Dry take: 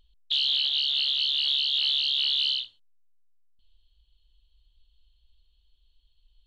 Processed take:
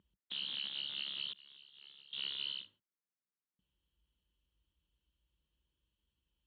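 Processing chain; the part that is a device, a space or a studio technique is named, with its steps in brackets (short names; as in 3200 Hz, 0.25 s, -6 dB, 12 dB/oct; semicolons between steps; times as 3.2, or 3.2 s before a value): 1.33–2.13 expander -13 dBFS; bass cabinet (speaker cabinet 75–2200 Hz, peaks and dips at 83 Hz -8 dB, 190 Hz +10 dB, 320 Hz +4 dB, 720 Hz -8 dB); gain -1.5 dB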